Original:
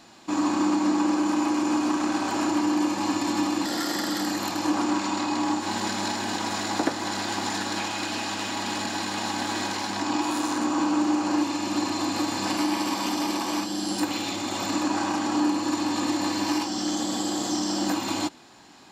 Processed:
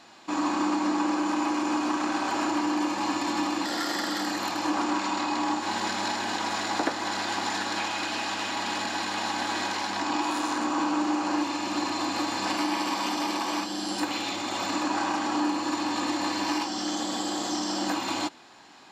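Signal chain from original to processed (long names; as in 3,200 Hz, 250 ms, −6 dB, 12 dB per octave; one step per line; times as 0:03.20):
low-pass filter 3,900 Hz 6 dB per octave
low-shelf EQ 370 Hz −10.5 dB
in parallel at −9 dB: soft clipping −22 dBFS, distortion −21 dB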